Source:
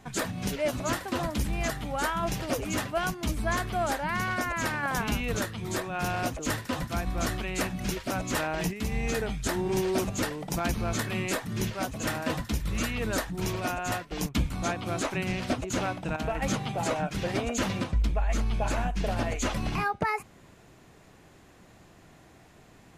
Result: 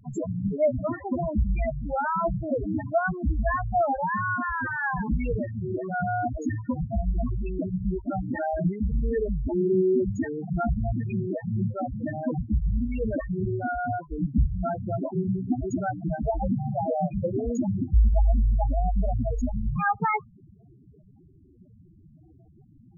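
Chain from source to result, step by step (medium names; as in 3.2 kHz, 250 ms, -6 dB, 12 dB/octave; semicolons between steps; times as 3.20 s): vibrato 0.4 Hz 19 cents; loudest bins only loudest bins 4; trim +7 dB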